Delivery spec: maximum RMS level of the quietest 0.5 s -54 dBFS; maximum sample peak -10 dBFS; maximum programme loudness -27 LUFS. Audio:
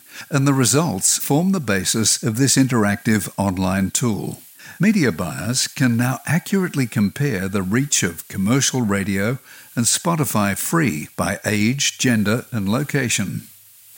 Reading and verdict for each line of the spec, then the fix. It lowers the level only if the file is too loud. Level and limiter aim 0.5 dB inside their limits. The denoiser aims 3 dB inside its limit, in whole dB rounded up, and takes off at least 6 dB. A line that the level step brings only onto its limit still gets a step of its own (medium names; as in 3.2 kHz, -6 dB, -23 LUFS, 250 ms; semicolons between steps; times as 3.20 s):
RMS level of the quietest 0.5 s -46 dBFS: fail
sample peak -4.0 dBFS: fail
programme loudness -19.0 LUFS: fail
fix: trim -8.5 dB